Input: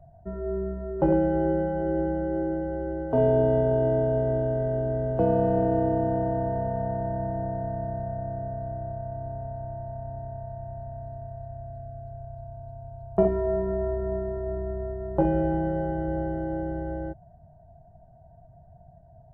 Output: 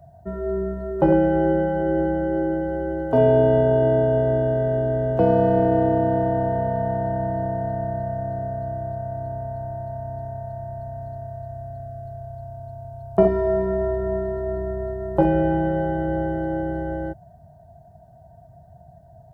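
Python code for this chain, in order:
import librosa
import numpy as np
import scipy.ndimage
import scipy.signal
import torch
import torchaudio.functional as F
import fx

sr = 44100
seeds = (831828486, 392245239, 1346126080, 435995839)

y = scipy.signal.sosfilt(scipy.signal.butter(2, 60.0, 'highpass', fs=sr, output='sos'), x)
y = fx.high_shelf(y, sr, hz=2100.0, db=10.5)
y = y * 10.0 ** (4.5 / 20.0)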